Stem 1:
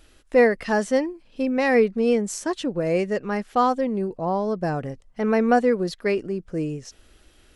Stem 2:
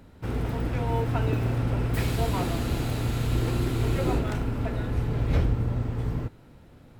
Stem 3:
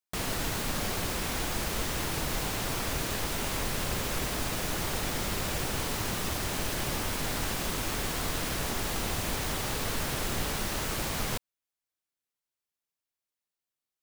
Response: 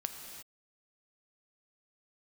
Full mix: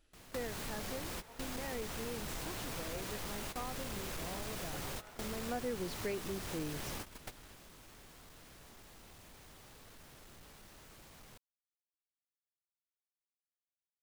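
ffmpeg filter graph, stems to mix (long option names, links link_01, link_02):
-filter_complex "[0:a]volume=-6dB,afade=type=in:start_time=5.42:duration=0.39:silence=0.266073,asplit=2[link_01][link_02];[1:a]highpass=frequency=500:width=0.5412,highpass=frequency=500:width=1.3066,adelay=750,volume=-17.5dB[link_03];[2:a]asoftclip=type=hard:threshold=-28dB,volume=-4dB[link_04];[link_02]apad=whole_len=618370[link_05];[link_04][link_05]sidechaingate=range=-20dB:threshold=-55dB:ratio=16:detection=peak[link_06];[link_01][link_03][link_06]amix=inputs=3:normalize=0,acompressor=threshold=-43dB:ratio=2"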